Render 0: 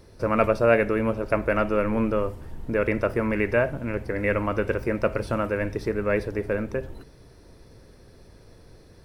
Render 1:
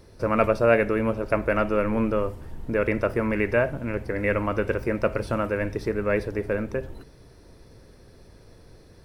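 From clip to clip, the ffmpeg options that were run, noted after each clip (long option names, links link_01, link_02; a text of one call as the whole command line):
ffmpeg -i in.wav -af anull out.wav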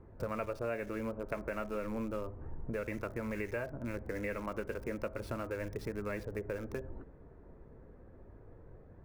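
ffmpeg -i in.wav -filter_complex "[0:a]flanger=delay=0.8:depth=4.4:regen=-66:speed=0.33:shape=triangular,acrossover=split=650|1700[link_01][link_02][link_03];[link_03]acrusher=bits=7:mix=0:aa=0.000001[link_04];[link_01][link_02][link_04]amix=inputs=3:normalize=0,acompressor=threshold=-36dB:ratio=4" out.wav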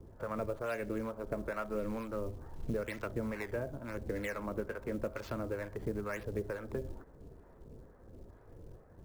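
ffmpeg -i in.wav -filter_complex "[0:a]acrossover=split=230|2300[link_01][link_02][link_03];[link_03]acrusher=samples=19:mix=1:aa=0.000001:lfo=1:lforange=30.4:lforate=0.91[link_04];[link_01][link_02][link_04]amix=inputs=3:normalize=0,acrossover=split=630[link_05][link_06];[link_05]aeval=exprs='val(0)*(1-0.7/2+0.7/2*cos(2*PI*2.2*n/s))':channel_layout=same[link_07];[link_06]aeval=exprs='val(0)*(1-0.7/2-0.7/2*cos(2*PI*2.2*n/s))':channel_layout=same[link_08];[link_07][link_08]amix=inputs=2:normalize=0,acrusher=bits=7:mode=log:mix=0:aa=0.000001,volume=4dB" out.wav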